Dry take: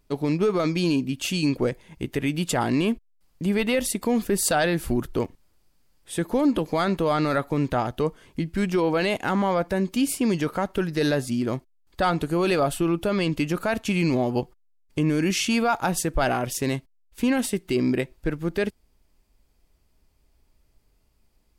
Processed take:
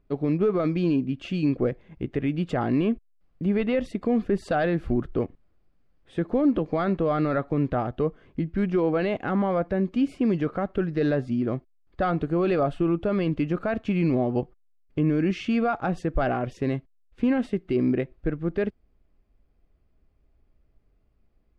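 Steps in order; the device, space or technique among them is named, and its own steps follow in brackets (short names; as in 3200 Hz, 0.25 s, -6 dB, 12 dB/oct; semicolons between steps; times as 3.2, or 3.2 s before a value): phone in a pocket (LPF 3300 Hz 12 dB/oct; high shelf 2100 Hz -12 dB); notch 920 Hz, Q 6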